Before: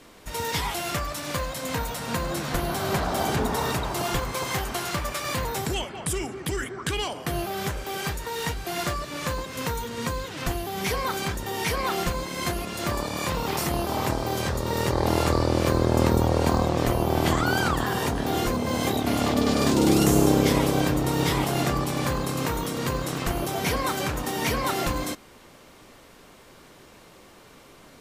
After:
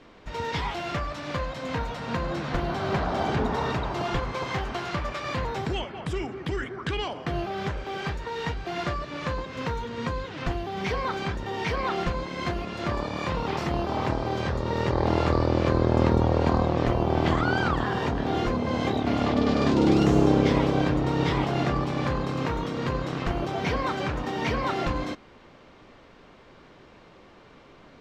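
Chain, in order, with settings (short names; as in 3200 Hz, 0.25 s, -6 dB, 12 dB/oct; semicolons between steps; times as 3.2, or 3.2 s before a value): air absorption 190 m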